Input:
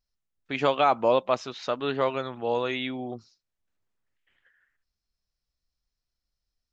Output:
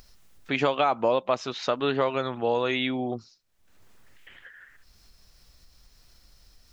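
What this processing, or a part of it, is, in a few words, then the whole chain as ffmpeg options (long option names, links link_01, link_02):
upward and downward compression: -af "acompressor=mode=upward:threshold=-41dB:ratio=2.5,acompressor=threshold=-26dB:ratio=3,volume=5dB"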